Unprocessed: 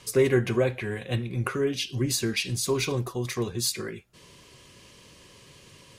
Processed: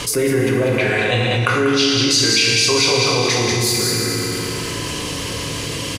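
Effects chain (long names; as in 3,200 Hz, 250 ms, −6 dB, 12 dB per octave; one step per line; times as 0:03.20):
0:00.78–0:03.34: drawn EQ curve 310 Hz 0 dB, 590 Hz +10 dB, 1,900 Hz +9 dB, 5,300 Hz +14 dB, 14,000 Hz −7 dB
single-tap delay 191 ms −5.5 dB
feedback delay network reverb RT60 2.1 s, low-frequency decay 0.9×, high-frequency decay 0.8×, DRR −2 dB
envelope flattener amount 70%
level −2.5 dB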